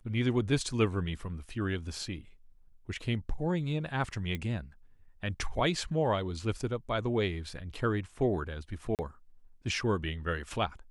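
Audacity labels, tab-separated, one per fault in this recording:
4.350000	4.350000	click −22 dBFS
8.950000	8.990000	drop-out 38 ms

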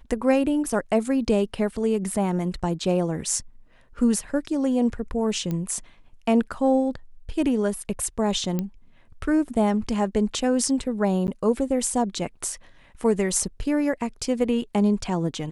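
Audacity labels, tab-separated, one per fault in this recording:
5.510000	5.510000	click −17 dBFS
8.590000	8.590000	click −14 dBFS
11.270000	11.280000	drop-out 9.8 ms

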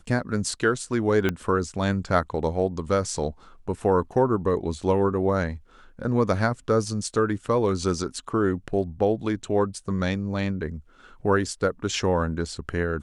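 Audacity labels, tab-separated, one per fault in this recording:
1.290000	1.290000	click −11 dBFS

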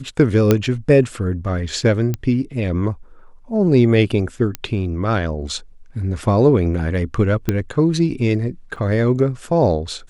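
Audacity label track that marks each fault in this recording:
0.510000	0.510000	click −1 dBFS
2.140000	2.140000	click −10 dBFS
4.550000	4.550000	click −8 dBFS
7.490000	7.490000	click −5 dBFS
8.760000	8.760000	drop-out 4.2 ms

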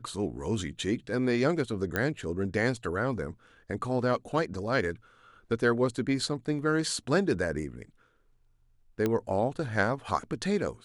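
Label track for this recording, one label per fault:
1.960000	1.960000	click −14 dBFS
9.060000	9.060000	click −15 dBFS

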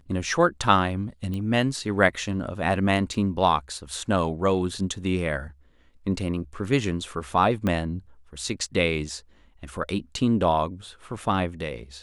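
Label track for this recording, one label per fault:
1.340000	1.340000	click −21 dBFS
3.140000	3.140000	drop-out 2.9 ms
7.670000	7.670000	click −14 dBFS

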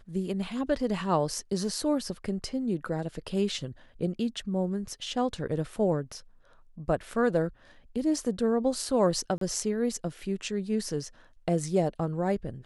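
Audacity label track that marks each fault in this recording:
9.380000	9.410000	drop-out 33 ms

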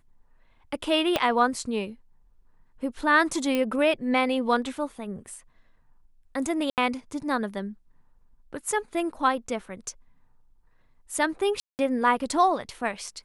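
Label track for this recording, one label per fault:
1.160000	1.160000	click −9 dBFS
3.550000	3.550000	click −13 dBFS
6.700000	6.780000	drop-out 78 ms
11.600000	11.790000	drop-out 189 ms

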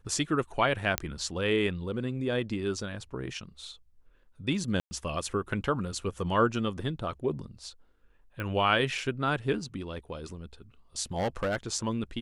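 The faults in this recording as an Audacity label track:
0.980000	0.980000	click −8 dBFS
4.800000	4.910000	drop-out 110 ms
8.400000	8.400000	click −23 dBFS
11.160000	11.560000	clipping −24.5 dBFS

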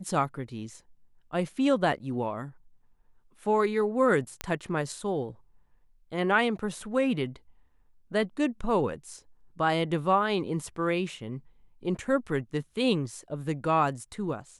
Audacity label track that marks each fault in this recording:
4.410000	4.410000	click −14 dBFS

